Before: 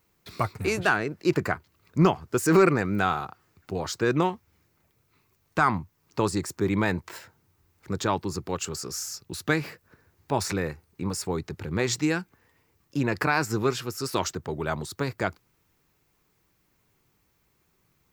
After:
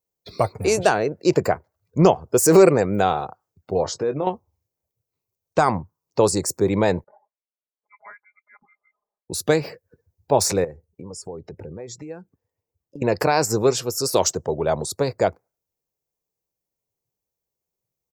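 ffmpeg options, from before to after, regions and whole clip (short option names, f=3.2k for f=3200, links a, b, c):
-filter_complex "[0:a]asettb=1/sr,asplit=3[a][b][c];[a]atrim=end=3.854[d];[b]atrim=start=3.85:end=4.27,asetpts=PTS-STARTPTS,afade=t=in:d=0.004:c=qsin,afade=t=out:st=0.416:d=0.004:c=qsin,lowpass=f=2.8k:p=1,acompressor=threshold=-30dB:ratio=3:attack=3.2:release=140:knee=1:detection=peak,asplit=2[e][f];[f]adelay=21,volume=-9dB[g];[e][g]amix=inputs=2:normalize=0,atrim=end_sample=18522[h];[c]atrim=start=4.266[i];[d][h]acrossfade=d=0.004:c1=hsin:c2=qsin[j];[j][i]acrossfade=d=0.004:c1=qsin:c2=hsin,asettb=1/sr,asplit=3[k][l][m];[k]atrim=end=7.044[n];[l]atrim=start=7.04:end=9.3,asetpts=PTS-STARTPTS,afade=t=in:d=0.004:c=qsin,afade=t=out:st=2.256:d=0.004:c=qsin,aderivative,aecho=1:1:4.8:0.72,atrim=end_sample=99666,lowpass=f=2.1k:t=q:w=0.5098,lowpass=f=2.1k:t=q:w=0.6013,lowpass=f=2.1k:t=q:w=0.9,lowpass=f=2.1k:t=q:w=2.563,afreqshift=-2500[o];[m]atrim=start=9.296[p];[n][o]acrossfade=d=0.004:c1=hsin:c2=qsin[q];[q][p]acrossfade=d=0.004:c1=qsin:c2=hsin,asettb=1/sr,asplit=3[r][s][t];[r]atrim=end=10.644[u];[s]atrim=start=10.64:end=13.02,asetpts=PTS-STARTPTS,afade=t=in:d=0.004:c=qsin,afade=t=out:st=2.376:d=0.004:c=qsin,acompressor=threshold=-37dB:ratio=8:attack=3.2:release=140:knee=1:detection=peak,highshelf=f=2.1k:g=-5[v];[t]atrim=start=13.016[w];[u][v]acrossfade=d=0.004:c1=hsin:c2=qsin[x];[x][w]acrossfade=d=0.004:c1=qsin:c2=hsin,afftdn=nr=25:nf=-49,firequalizer=gain_entry='entry(320,0);entry(510,11);entry(1300,-6);entry(6000,9)':delay=0.05:min_phase=1,volume=3dB"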